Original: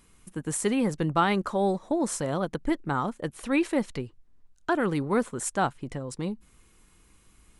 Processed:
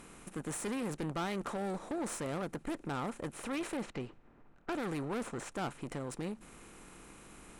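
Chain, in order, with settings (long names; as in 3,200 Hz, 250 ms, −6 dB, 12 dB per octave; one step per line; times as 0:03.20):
compressor on every frequency bin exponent 0.6
0:03.77–0:05.52: low-pass that shuts in the quiet parts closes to 1,600 Hz, open at −18 dBFS
tube saturation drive 23 dB, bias 0.45
level −9 dB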